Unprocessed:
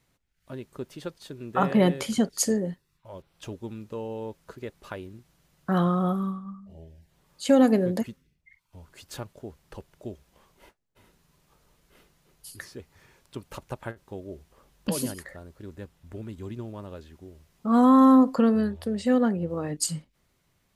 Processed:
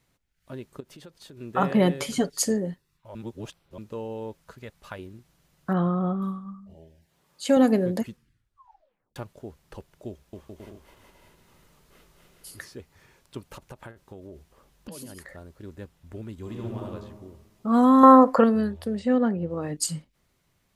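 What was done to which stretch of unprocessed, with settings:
0.8–1.37 compressor, threshold -43 dBFS
2–2.42 comb 7 ms
3.15–3.78 reverse
4.42–4.99 bell 350 Hz -10.5 dB 0.84 oct
5.73–6.22 tape spacing loss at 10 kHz 29 dB
6.74–7.57 HPF 190 Hz 6 dB/oct
8.08 tape stop 1.08 s
10.08–12.66 bouncing-ball echo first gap 0.25 s, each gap 0.65×, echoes 6, each echo -2 dB
13.4–15.37 compressor 5:1, threshold -38 dBFS
16.42–16.85 reverb throw, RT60 1.4 s, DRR -1.5 dB
18.03–18.44 band shelf 990 Hz +10.5 dB 2.5 oct
18.98–19.61 LPF 2100 Hz -> 5000 Hz 6 dB/oct

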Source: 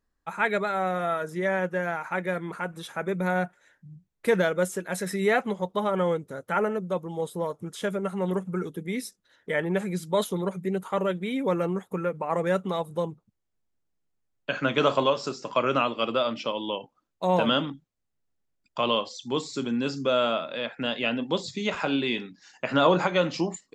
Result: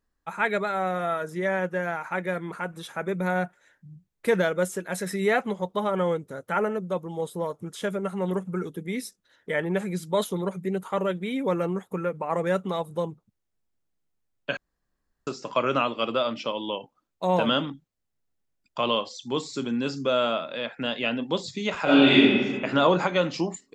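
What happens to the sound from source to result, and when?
14.57–15.27 room tone
21.84–22.26 reverb throw, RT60 1.6 s, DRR -10.5 dB

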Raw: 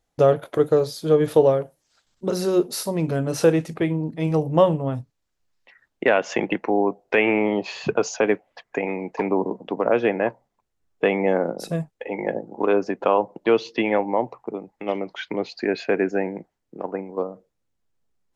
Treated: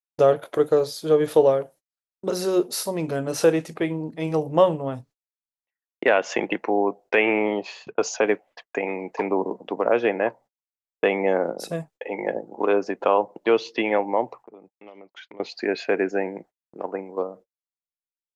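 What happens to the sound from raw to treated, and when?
7.51–7.98 fade out
14.4–15.4 compressor 16:1, threshold -38 dBFS
whole clip: gate -44 dBFS, range -38 dB; tone controls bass -8 dB, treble +1 dB

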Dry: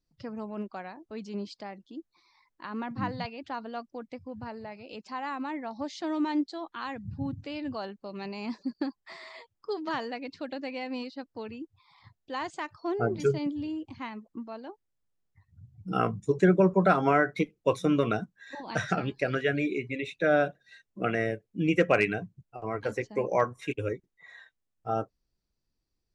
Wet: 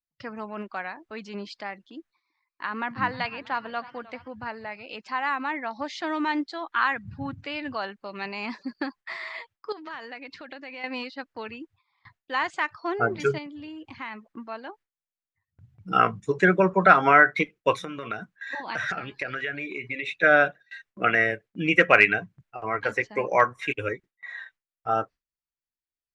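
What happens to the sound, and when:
1.99–4.28 warbling echo 0.313 s, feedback 58%, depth 120 cents, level -19 dB
6.7–7.46 dynamic EQ 1400 Hz, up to +6 dB, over -50 dBFS, Q 1.2
9.72–10.84 compressor 12:1, threshold -40 dBFS
13.38–14.25 compressor, threshold -37 dBFS
17.82–20.23 compressor 8:1, threshold -33 dBFS
whole clip: gate with hold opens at -47 dBFS; bell 1800 Hz +15 dB 2.4 oct; gain -2.5 dB

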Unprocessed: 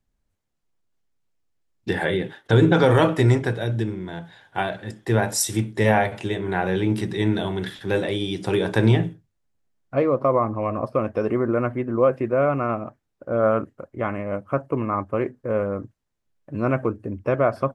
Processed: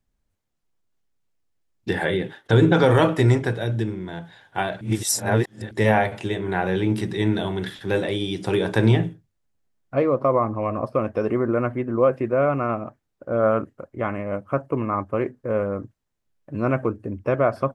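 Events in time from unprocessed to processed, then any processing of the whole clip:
4.81–5.71 reverse

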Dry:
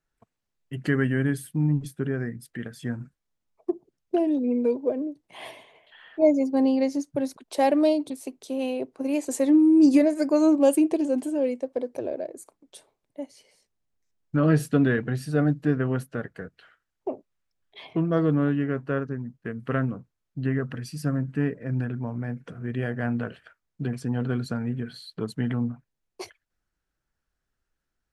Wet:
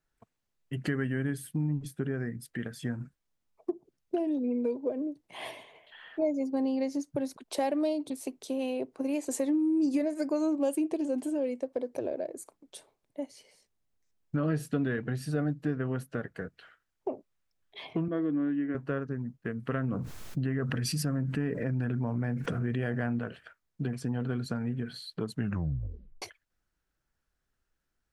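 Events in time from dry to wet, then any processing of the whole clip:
18.08–18.75 speaker cabinet 290–3100 Hz, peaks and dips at 300 Hz +7 dB, 430 Hz -8 dB, 610 Hz -5 dB, 880 Hz -9 dB, 1300 Hz -9 dB, 2700 Hz -7 dB
19.84–23.19 fast leveller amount 70%
25.36 tape stop 0.86 s
whole clip: compressor 2.5:1, threshold -30 dBFS

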